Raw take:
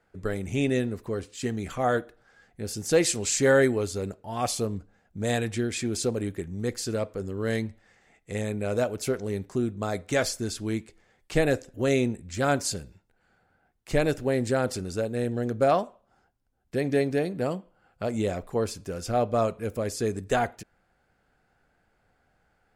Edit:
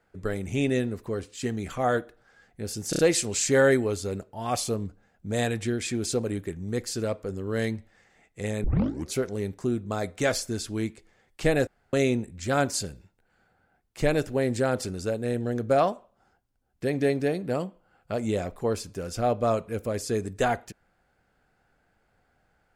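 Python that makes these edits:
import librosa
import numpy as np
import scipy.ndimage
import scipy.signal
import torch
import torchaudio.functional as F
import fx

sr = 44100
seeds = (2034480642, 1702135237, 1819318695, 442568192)

y = fx.edit(x, sr, fx.stutter(start_s=2.9, slice_s=0.03, count=4),
    fx.tape_start(start_s=8.55, length_s=0.51),
    fx.room_tone_fill(start_s=11.58, length_s=0.26), tone=tone)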